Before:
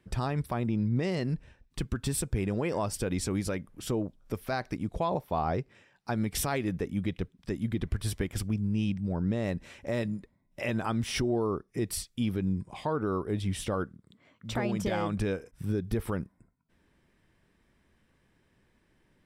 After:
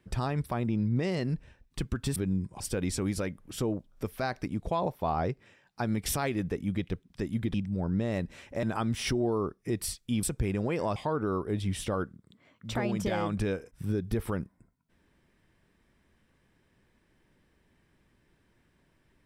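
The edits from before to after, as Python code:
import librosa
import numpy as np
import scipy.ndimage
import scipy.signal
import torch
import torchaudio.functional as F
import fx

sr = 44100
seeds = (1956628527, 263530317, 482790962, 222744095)

y = fx.edit(x, sr, fx.swap(start_s=2.16, length_s=0.73, other_s=12.32, other_length_s=0.44),
    fx.cut(start_s=7.83, length_s=1.03),
    fx.cut(start_s=9.95, length_s=0.77), tone=tone)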